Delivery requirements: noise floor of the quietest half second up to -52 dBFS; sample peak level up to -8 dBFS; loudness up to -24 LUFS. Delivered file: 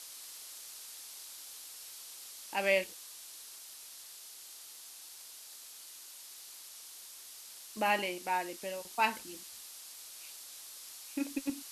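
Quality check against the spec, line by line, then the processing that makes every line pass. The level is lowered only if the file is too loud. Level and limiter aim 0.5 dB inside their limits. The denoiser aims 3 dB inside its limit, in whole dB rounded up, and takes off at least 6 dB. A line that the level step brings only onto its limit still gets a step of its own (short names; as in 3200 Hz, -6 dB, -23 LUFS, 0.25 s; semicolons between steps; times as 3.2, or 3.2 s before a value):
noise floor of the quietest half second -51 dBFS: fail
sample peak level -14.0 dBFS: OK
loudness -39.0 LUFS: OK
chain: denoiser 6 dB, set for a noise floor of -51 dBFS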